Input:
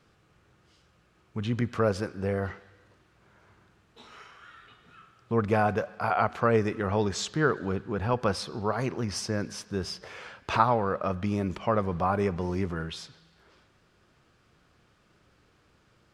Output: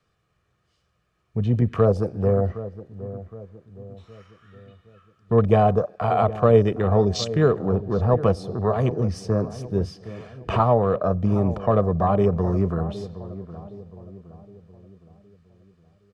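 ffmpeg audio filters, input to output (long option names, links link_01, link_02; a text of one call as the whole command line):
ffmpeg -i in.wav -filter_complex "[0:a]afwtdn=0.0178,bandreject=frequency=550:width=12,acrossover=split=200|900|3400[link_01][link_02][link_03][link_04];[link_03]acompressor=threshold=-49dB:ratio=6[link_05];[link_01][link_02][link_05][link_04]amix=inputs=4:normalize=0,aecho=1:1:1.7:0.42,asplit=2[link_06][link_07];[link_07]adelay=765,lowpass=frequency=1000:poles=1,volume=-14dB,asplit=2[link_08][link_09];[link_09]adelay=765,lowpass=frequency=1000:poles=1,volume=0.48,asplit=2[link_10][link_11];[link_11]adelay=765,lowpass=frequency=1000:poles=1,volume=0.48,asplit=2[link_12][link_13];[link_13]adelay=765,lowpass=frequency=1000:poles=1,volume=0.48,asplit=2[link_14][link_15];[link_15]adelay=765,lowpass=frequency=1000:poles=1,volume=0.48[link_16];[link_06][link_08][link_10][link_12][link_14][link_16]amix=inputs=6:normalize=0,volume=8.5dB" out.wav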